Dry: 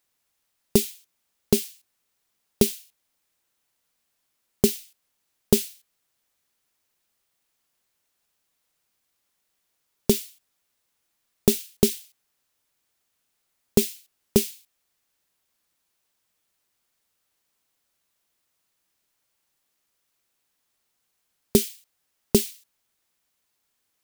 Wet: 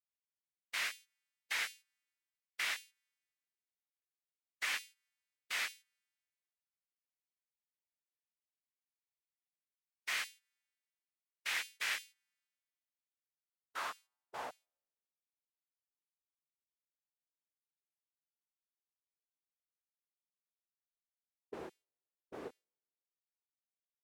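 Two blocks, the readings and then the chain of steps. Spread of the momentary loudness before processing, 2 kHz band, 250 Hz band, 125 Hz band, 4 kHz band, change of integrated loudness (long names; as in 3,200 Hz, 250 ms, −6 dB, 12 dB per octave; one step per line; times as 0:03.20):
12 LU, +6.0 dB, −34.5 dB, below −35 dB, −8.5 dB, −15.0 dB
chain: every partial snapped to a pitch grid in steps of 2 semitones
brickwall limiter −7.5 dBFS, peak gain reduction 8.5 dB
wrap-around overflow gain 20.5 dB
band-pass filter sweep 2,000 Hz → 410 Hz, 0:13.15–0:15.22
multiband upward and downward expander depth 70%
level −3.5 dB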